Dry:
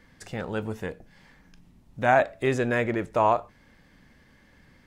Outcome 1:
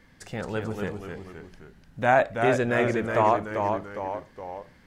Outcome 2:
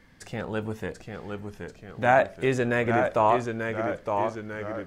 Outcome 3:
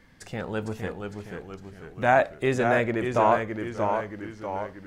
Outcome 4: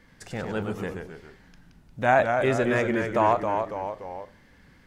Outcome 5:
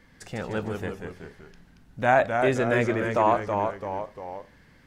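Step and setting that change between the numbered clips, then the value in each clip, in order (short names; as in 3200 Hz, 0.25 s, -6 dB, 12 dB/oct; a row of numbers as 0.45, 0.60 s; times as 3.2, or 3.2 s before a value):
echoes that change speed, time: 207, 726, 443, 82, 138 ms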